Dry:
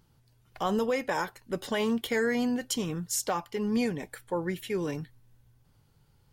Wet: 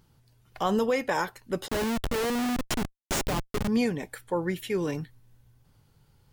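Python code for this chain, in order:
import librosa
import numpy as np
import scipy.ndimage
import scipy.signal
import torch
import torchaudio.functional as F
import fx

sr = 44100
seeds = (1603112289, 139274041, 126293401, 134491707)

y = fx.schmitt(x, sr, flips_db=-28.0, at=(1.68, 3.68))
y = y * librosa.db_to_amplitude(2.5)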